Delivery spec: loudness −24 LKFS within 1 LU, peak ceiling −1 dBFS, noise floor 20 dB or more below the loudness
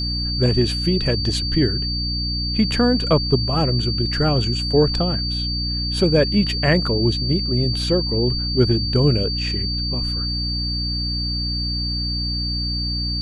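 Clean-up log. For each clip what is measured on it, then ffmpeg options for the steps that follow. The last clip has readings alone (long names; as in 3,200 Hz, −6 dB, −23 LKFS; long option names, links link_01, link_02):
mains hum 60 Hz; hum harmonics up to 300 Hz; level of the hum −23 dBFS; interfering tone 4,600 Hz; level of the tone −24 dBFS; integrated loudness −20.0 LKFS; sample peak −3.5 dBFS; target loudness −24.0 LKFS
→ -af "bandreject=frequency=60:width_type=h:width=4,bandreject=frequency=120:width_type=h:width=4,bandreject=frequency=180:width_type=h:width=4,bandreject=frequency=240:width_type=h:width=4,bandreject=frequency=300:width_type=h:width=4"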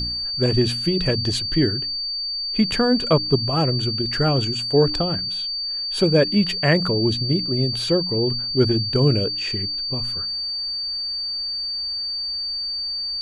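mains hum none found; interfering tone 4,600 Hz; level of the tone −24 dBFS
→ -af "bandreject=frequency=4600:width=30"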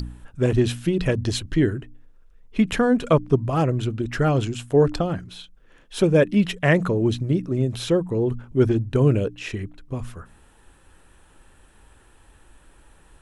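interfering tone none found; integrated loudness −22.0 LKFS; sample peak −5.5 dBFS; target loudness −24.0 LKFS
→ -af "volume=-2dB"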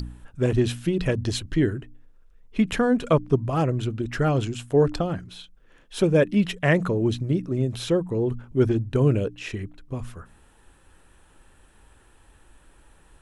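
integrated loudness −24.0 LKFS; sample peak −7.5 dBFS; background noise floor −56 dBFS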